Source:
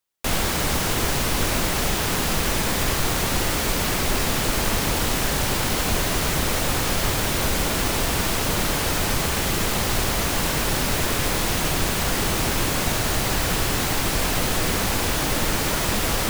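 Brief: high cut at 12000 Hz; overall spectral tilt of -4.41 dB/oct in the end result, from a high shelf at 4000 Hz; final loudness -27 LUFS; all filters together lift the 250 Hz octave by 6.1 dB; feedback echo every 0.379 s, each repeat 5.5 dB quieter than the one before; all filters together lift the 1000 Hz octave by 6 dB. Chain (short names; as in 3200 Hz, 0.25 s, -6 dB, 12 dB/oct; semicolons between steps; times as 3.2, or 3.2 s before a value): LPF 12000 Hz; bell 250 Hz +7.5 dB; bell 1000 Hz +7.5 dB; high shelf 4000 Hz -5.5 dB; feedback echo 0.379 s, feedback 53%, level -5.5 dB; gain -7.5 dB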